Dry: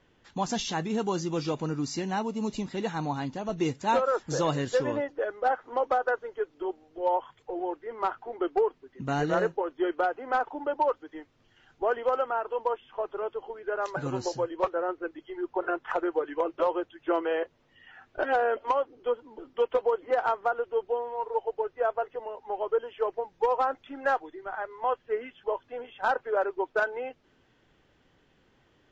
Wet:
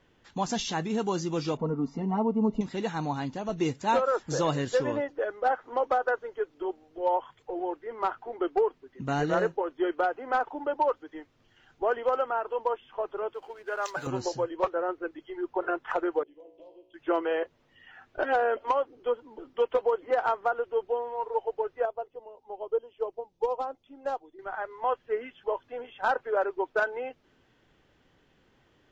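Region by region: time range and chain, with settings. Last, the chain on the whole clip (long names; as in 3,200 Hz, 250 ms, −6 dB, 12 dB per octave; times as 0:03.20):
0:01.57–0:02.61: Savitzky-Golay smoothing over 65 samples + comb filter 4.4 ms, depth 97%
0:13.34–0:14.07: spectral tilt +3.5 dB per octave + slack as between gear wheels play −48.5 dBFS
0:16.23–0:16.94: Butterworth band-reject 1,400 Hz, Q 0.67 + downward compressor 2 to 1, threshold −48 dBFS + tuned comb filter 61 Hz, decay 0.83 s, mix 80%
0:21.85–0:24.39: parametric band 1,700 Hz −14.5 dB 1.1 octaves + expander for the loud parts, over −39 dBFS
whole clip: no processing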